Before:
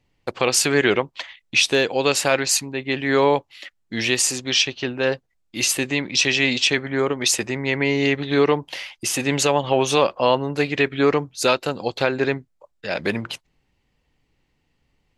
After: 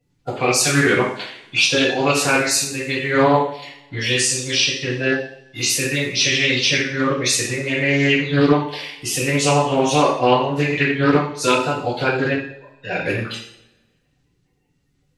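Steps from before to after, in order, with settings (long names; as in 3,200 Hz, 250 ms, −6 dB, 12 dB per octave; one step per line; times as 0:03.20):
spectral magnitudes quantised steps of 30 dB
coupled-rooms reverb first 0.59 s, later 1.6 s, from −23 dB, DRR −7 dB
highs frequency-modulated by the lows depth 0.23 ms
level −5 dB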